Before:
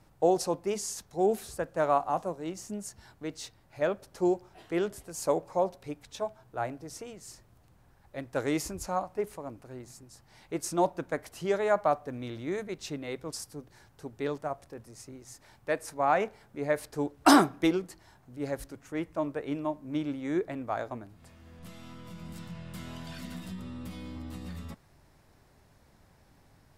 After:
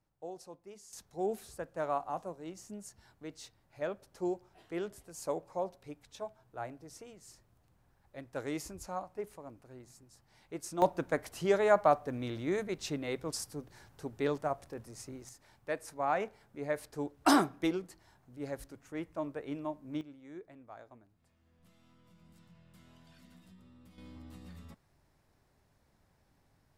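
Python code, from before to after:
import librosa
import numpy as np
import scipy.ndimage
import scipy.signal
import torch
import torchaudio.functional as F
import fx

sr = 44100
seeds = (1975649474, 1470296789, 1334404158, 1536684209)

y = fx.gain(x, sr, db=fx.steps((0.0, -20.0), (0.93, -8.0), (10.82, 0.5), (15.29, -6.0), (20.01, -18.0), (23.98, -9.5)))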